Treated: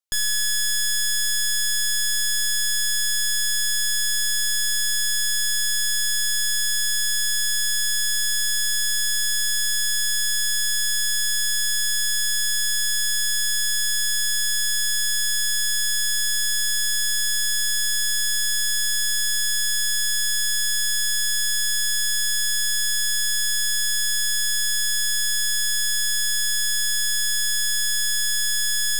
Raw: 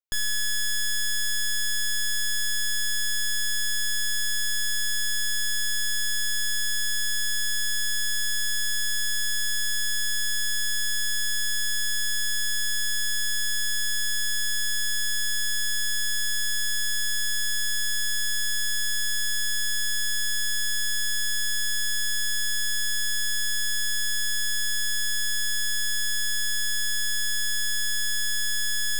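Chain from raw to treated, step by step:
parametric band 7,600 Hz +6.5 dB 2.5 octaves

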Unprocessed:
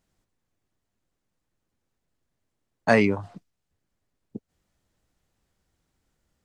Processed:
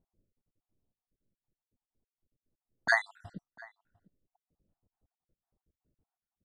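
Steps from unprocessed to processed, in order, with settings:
time-frequency cells dropped at random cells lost 63%
low-pass that shuts in the quiet parts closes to 510 Hz, open at −37 dBFS
slap from a distant wall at 120 metres, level −22 dB

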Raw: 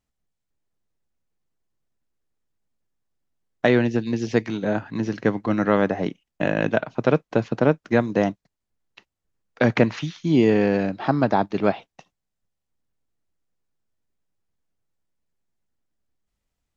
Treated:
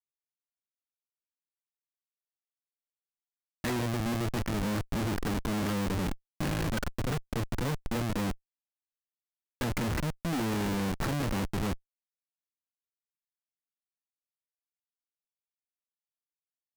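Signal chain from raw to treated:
low-pass that shuts in the quiet parts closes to 620 Hz, open at −18 dBFS
phaser with its sweep stopped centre 1,700 Hz, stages 4
comparator with hysteresis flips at −33 dBFS
level −1.5 dB

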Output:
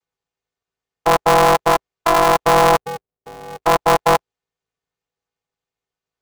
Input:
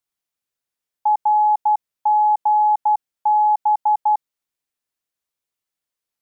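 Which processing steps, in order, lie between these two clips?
channel vocoder with a chord as carrier major triad, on A3
0:02.77–0:03.63: Butterworth low-pass 580 Hz 72 dB per octave
in parallel at +2 dB: brickwall limiter −17.5 dBFS, peak gain reduction 10.5 dB
on the sum: ring modulator with a square carrier 170 Hz

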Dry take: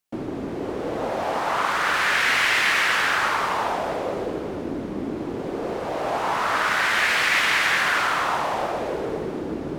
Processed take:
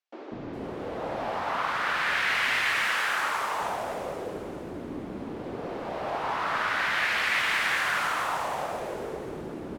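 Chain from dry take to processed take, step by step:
0:02.68–0:03.42: low-shelf EQ 150 Hz −11 dB
three-band delay without the direct sound mids, lows, highs 190/410 ms, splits 350/5,800 Hz
level −5.5 dB

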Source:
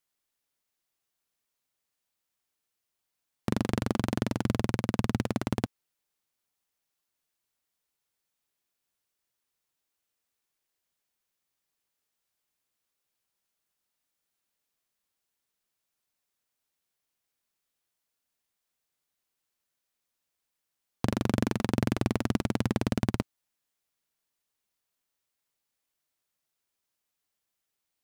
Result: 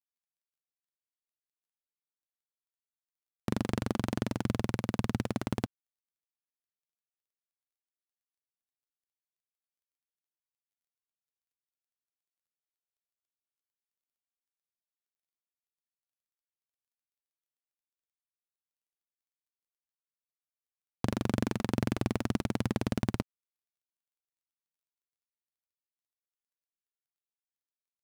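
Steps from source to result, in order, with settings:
bit-depth reduction 12 bits, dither none
level −3 dB

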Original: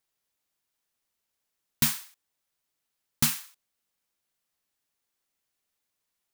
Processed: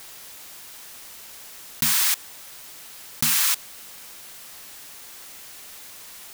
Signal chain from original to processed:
low-shelf EQ 500 Hz −4.5 dB
envelope flattener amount 100%

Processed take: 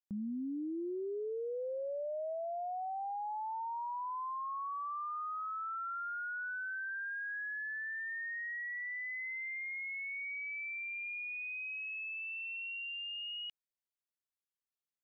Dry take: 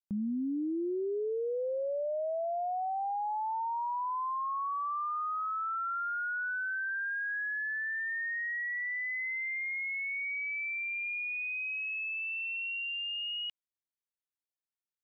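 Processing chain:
0:00.78–0:02.33: envelope flattener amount 70%
level −5.5 dB

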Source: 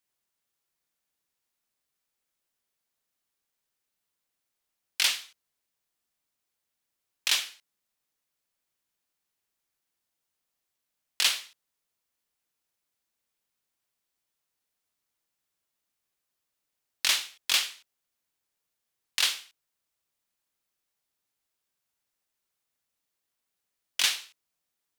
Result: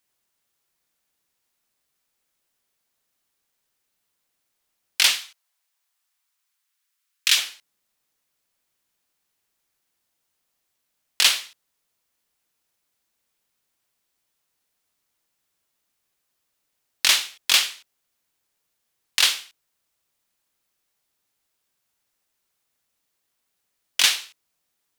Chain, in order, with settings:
0:05.19–0:07.35: high-pass filter 600 Hz → 1,300 Hz 24 dB per octave
level +7 dB

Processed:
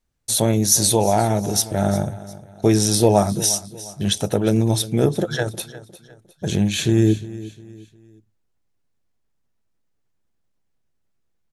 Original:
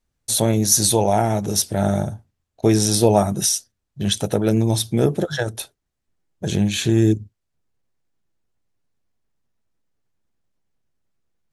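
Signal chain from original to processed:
repeating echo 355 ms, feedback 37%, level −17 dB

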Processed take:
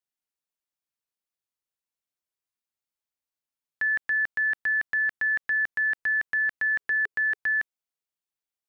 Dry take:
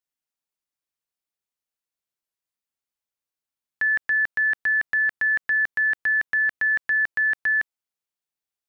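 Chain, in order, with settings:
0:06.80–0:07.36: parametric band 420 Hz +13.5 dB → +2 dB 0.37 octaves
level −3.5 dB

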